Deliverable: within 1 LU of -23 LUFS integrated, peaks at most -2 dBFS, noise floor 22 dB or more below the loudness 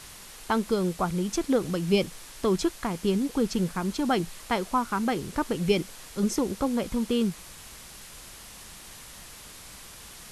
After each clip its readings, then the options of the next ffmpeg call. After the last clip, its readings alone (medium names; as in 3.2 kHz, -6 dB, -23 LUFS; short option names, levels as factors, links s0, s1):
noise floor -46 dBFS; noise floor target -50 dBFS; loudness -27.5 LUFS; peak level -11.5 dBFS; loudness target -23.0 LUFS
-> -af "afftdn=nr=6:nf=-46"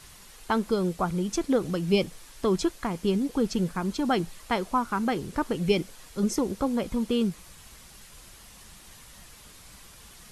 noise floor -50 dBFS; loudness -28.0 LUFS; peak level -11.5 dBFS; loudness target -23.0 LUFS
-> -af "volume=1.78"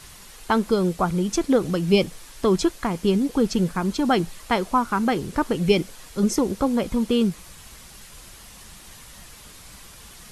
loudness -23.0 LUFS; peak level -6.5 dBFS; noise floor -45 dBFS